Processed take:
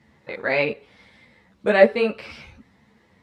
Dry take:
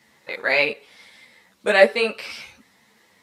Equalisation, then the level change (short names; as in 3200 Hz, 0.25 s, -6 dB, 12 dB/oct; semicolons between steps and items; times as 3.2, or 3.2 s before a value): RIAA curve playback; -1.5 dB